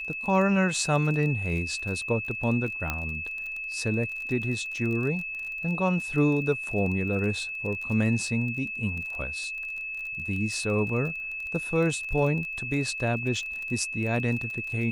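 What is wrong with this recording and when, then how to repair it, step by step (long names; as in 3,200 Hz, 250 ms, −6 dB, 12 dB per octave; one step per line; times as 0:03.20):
surface crackle 26 per second −33 dBFS
whistle 2,600 Hz −32 dBFS
0:02.90: click −13 dBFS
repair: click removal
notch filter 2,600 Hz, Q 30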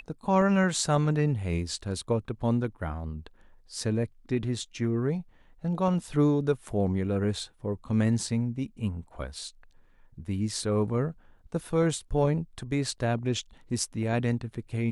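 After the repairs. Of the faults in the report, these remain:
none of them is left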